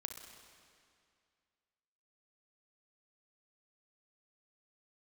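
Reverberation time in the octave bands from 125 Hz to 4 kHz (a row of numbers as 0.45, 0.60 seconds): 2.3, 2.3, 2.3, 2.3, 2.2, 2.1 seconds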